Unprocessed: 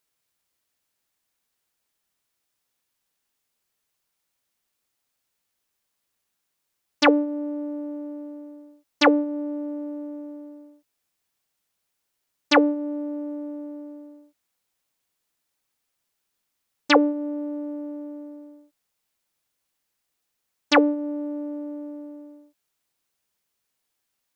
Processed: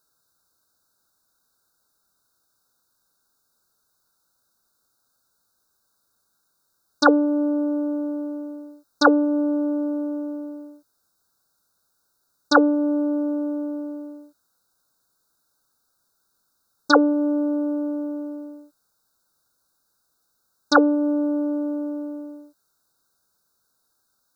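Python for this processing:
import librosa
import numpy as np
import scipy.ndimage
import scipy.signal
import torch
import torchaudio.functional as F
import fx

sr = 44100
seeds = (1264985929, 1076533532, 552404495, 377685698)

p1 = scipy.signal.sosfilt(scipy.signal.cheby1(5, 1.0, [1600.0, 3700.0], 'bandstop', fs=sr, output='sos'), x)
p2 = fx.peak_eq(p1, sr, hz=1400.0, db=7.5, octaves=0.26)
p3 = fx.over_compress(p2, sr, threshold_db=-28.0, ratio=-1.0)
p4 = p2 + (p3 * librosa.db_to_amplitude(-2.0))
y = p4 * librosa.db_to_amplitude(1.0)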